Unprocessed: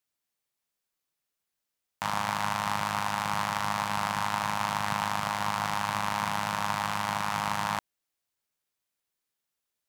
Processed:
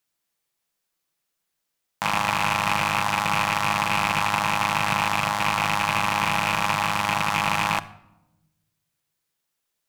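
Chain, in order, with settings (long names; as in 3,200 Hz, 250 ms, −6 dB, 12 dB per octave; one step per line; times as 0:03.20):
loose part that buzzes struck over −39 dBFS, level −18 dBFS
mains-hum notches 50/100 Hz
convolution reverb RT60 0.95 s, pre-delay 6 ms, DRR 12 dB
level +5.5 dB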